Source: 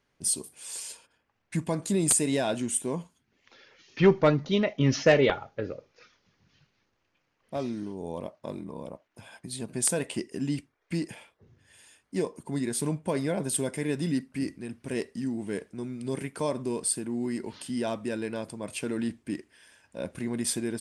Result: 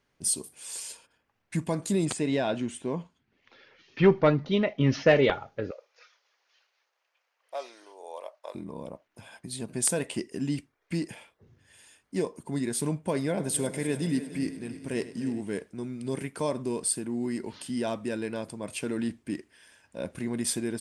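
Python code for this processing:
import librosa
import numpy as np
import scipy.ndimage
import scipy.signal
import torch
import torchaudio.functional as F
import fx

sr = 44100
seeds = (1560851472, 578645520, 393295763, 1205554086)

y = fx.lowpass(x, sr, hz=4000.0, slope=12, at=(2.05, 5.16))
y = fx.cheby2_highpass(y, sr, hz=160.0, order=4, stop_db=60, at=(5.71, 8.55))
y = fx.echo_heads(y, sr, ms=100, heads='first and third', feedback_pct=58, wet_db=-15.5, at=(13.24, 15.41))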